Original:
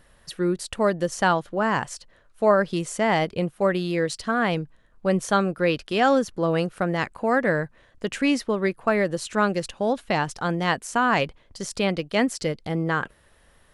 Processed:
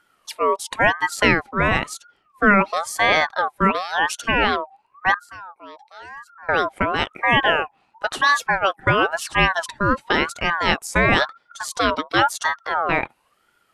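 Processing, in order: spectral noise reduction 11 dB; 5.14–6.49 s: amplifier tone stack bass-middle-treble 10-0-1; ring modulator with a swept carrier 1.1 kHz, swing 30%, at 0.96 Hz; trim +7 dB

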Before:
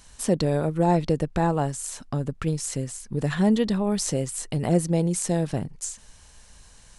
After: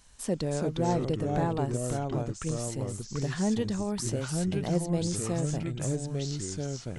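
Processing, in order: ever faster or slower copies 282 ms, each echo -3 st, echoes 2; trim -7.5 dB

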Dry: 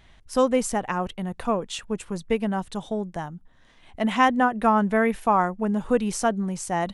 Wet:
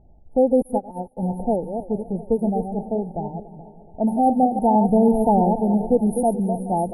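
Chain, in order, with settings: chunks repeated in reverse 164 ms, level -7 dB; FFT band-reject 910–9300 Hz; level-controlled noise filter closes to 740 Hz, open at -20.5 dBFS; 4.89–5.60 s: bass shelf 340 Hz +8 dB; multi-head delay 142 ms, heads second and third, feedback 45%, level -17.5 dB; loudness maximiser +10 dB; 0.62–1.17 s: upward expansion 2.5:1, over -26 dBFS; trim -6.5 dB

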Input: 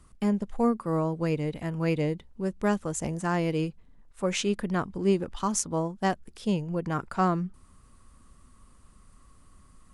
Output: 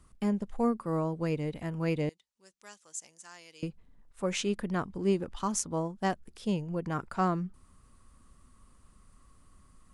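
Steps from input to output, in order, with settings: 2.09–3.63 s: band-pass filter 6.4 kHz, Q 1.3; trim -3.5 dB

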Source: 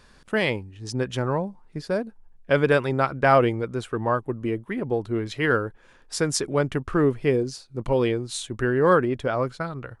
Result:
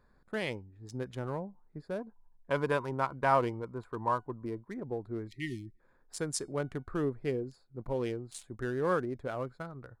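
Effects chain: local Wiener filter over 15 samples; 1.99–4.65 s: peaking EQ 990 Hz +14.5 dB 0.27 oct; 5.28–5.80 s: spectral selection erased 400–1800 Hz; peaking EQ 9.9 kHz +7.5 dB 0.7 oct; feedback comb 730 Hz, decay 0.23 s, harmonics all, mix 40%; trim -7 dB

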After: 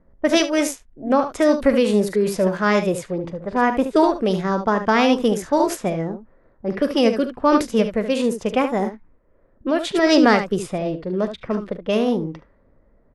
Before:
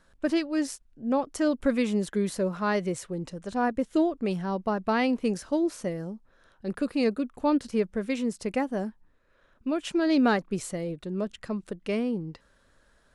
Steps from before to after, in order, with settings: early reflections 43 ms -16 dB, 73 ms -10 dB; formant shift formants +3 st; level-controlled noise filter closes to 570 Hz, open at -24 dBFS; trim +8 dB

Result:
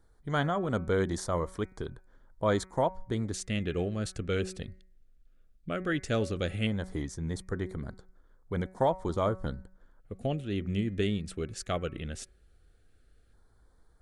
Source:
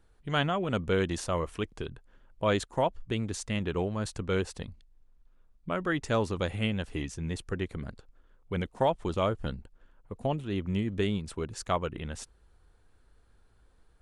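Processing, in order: de-hum 187.3 Hz, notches 13; LFO notch square 0.15 Hz 960–2700 Hz

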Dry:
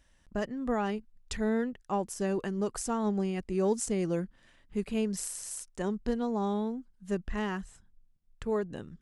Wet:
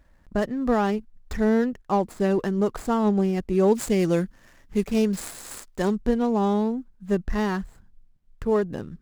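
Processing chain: median filter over 15 samples; 3.75–5.96 s: treble shelf 2.2 kHz +8 dB; trim +8.5 dB

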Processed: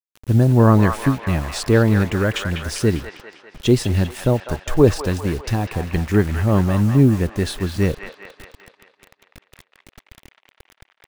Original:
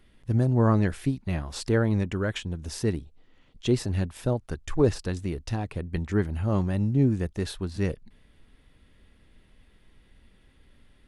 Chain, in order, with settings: bit crusher 8-bit; feedback echo behind a band-pass 199 ms, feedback 58%, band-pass 1.5 kHz, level -4 dB; trim +8.5 dB

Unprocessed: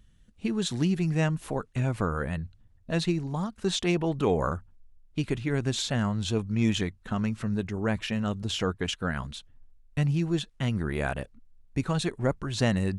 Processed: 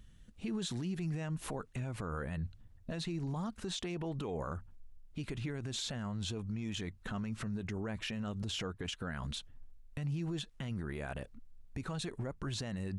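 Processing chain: compression 4:1, threshold -31 dBFS, peak gain reduction 10.5 dB; peak limiter -31.5 dBFS, peak gain reduction 11 dB; trim +1.5 dB

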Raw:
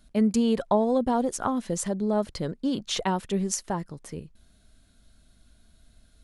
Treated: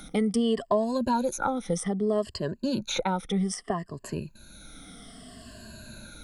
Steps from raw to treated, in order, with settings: drifting ripple filter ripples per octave 1.4, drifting -0.63 Hz, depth 18 dB; three bands compressed up and down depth 70%; trim -4 dB

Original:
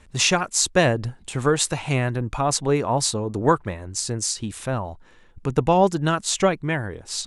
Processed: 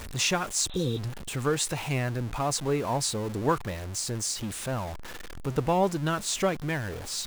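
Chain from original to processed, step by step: jump at every zero crossing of -26 dBFS; spectral replace 0.72–0.96 s, 530–4100 Hz before; trim -8 dB

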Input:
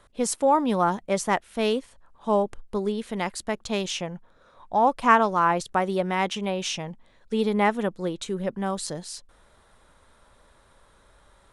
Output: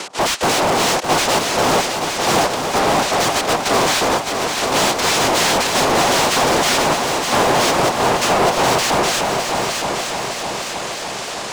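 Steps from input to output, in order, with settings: noise-vocoded speech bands 2; peak limiter -14.5 dBFS, peak gain reduction 11 dB; overdrive pedal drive 32 dB, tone 4.7 kHz, clips at -17 dBFS; upward compressor, threshold -31 dBFS; on a send: multi-head delay 305 ms, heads second and third, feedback 61%, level -7 dB; on the sum: trim +6 dB

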